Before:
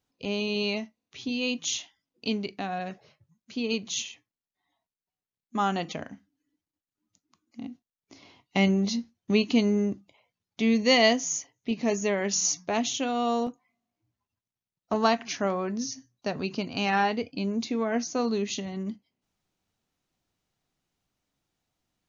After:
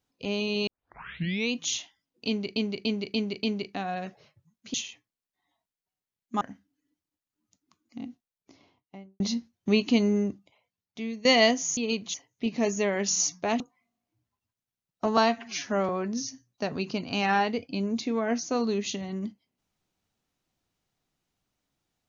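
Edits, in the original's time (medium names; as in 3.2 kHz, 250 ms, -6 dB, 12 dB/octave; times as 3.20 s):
0.67 s: tape start 0.85 s
2.27–2.56 s: loop, 5 plays
3.58–3.95 s: move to 11.39 s
5.62–6.03 s: delete
7.70–8.82 s: studio fade out
9.79–10.87 s: fade out, to -16.5 dB
12.85–13.48 s: delete
15.05–15.53 s: stretch 1.5×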